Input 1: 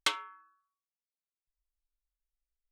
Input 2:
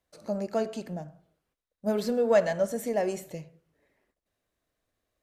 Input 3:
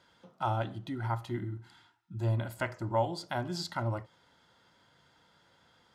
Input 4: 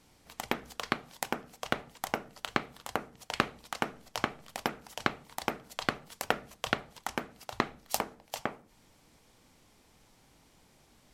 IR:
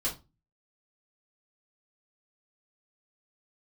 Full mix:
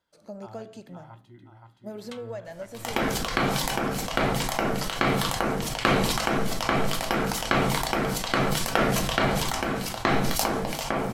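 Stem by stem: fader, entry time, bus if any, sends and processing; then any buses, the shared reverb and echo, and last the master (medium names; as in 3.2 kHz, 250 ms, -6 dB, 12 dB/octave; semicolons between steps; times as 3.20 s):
-17.5 dB, 2.05 s, send -14 dB, no echo send, none
-7.0 dB, 0.00 s, no send, no echo send, compression 6:1, threshold -27 dBFS, peak gain reduction 10 dB
-16.0 dB, 0.00 s, no send, echo send -3.5 dB, none
-0.5 dB, 2.45 s, send -4.5 dB, no echo send, de-hum 63.84 Hz, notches 3; decay stretcher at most 25 dB/s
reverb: on, RT60 0.25 s, pre-delay 3 ms
echo: feedback delay 522 ms, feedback 42%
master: none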